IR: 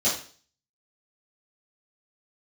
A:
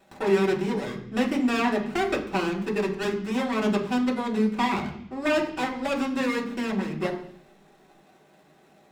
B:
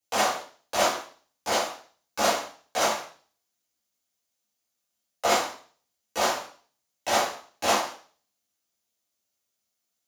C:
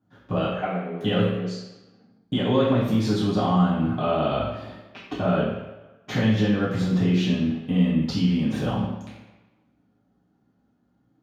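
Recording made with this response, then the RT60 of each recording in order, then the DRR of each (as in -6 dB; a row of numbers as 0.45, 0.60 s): B; 0.65, 0.45, 1.1 s; -2.5, -11.5, -10.5 dB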